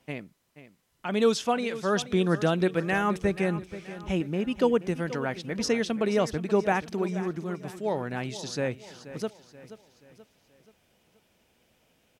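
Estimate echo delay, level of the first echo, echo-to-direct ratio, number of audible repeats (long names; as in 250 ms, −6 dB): 480 ms, −14.5 dB, −13.5 dB, 4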